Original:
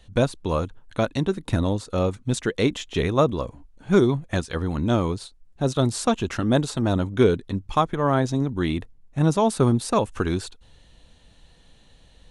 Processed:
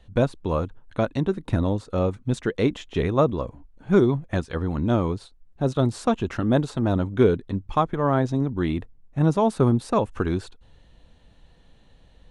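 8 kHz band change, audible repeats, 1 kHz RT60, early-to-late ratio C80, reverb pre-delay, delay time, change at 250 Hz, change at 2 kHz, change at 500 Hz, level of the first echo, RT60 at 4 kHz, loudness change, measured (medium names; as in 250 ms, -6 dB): -10.0 dB, no echo, no reverb, no reverb, no reverb, no echo, 0.0 dB, -2.5 dB, -0.5 dB, no echo, no reverb, -0.5 dB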